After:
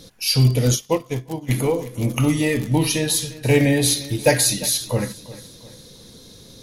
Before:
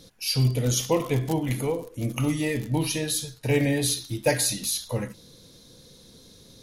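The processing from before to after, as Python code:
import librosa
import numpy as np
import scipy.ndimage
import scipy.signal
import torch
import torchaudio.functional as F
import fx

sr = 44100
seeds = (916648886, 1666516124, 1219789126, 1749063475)

y = fx.echo_feedback(x, sr, ms=350, feedback_pct=43, wet_db=-18.0)
y = fx.upward_expand(y, sr, threshold_db=-31.0, expansion=2.5, at=(0.75, 1.48), fade=0.02)
y = y * 10.0 ** (6.5 / 20.0)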